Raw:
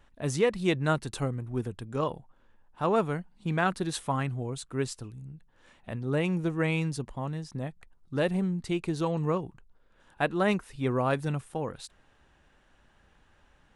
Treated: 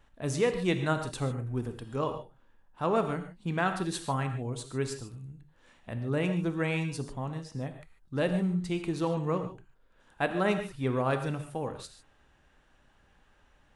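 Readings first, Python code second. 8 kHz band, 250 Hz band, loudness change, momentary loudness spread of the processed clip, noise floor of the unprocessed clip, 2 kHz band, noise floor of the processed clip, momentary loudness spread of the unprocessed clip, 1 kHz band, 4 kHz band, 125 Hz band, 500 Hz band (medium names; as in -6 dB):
-1.5 dB, -1.5 dB, -1.5 dB, 11 LU, -64 dBFS, -1.5 dB, -65 dBFS, 11 LU, -1.0 dB, -1.5 dB, -1.5 dB, -1.0 dB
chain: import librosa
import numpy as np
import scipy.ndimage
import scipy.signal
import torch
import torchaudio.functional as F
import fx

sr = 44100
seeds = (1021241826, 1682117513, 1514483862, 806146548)

y = fx.rev_gated(x, sr, seeds[0], gate_ms=170, shape='flat', drr_db=7.0)
y = y * librosa.db_to_amplitude(-2.0)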